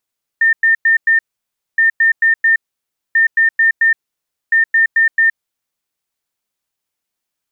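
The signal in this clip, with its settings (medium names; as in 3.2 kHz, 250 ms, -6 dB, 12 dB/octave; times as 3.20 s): beep pattern sine 1.81 kHz, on 0.12 s, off 0.10 s, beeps 4, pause 0.59 s, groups 4, -8 dBFS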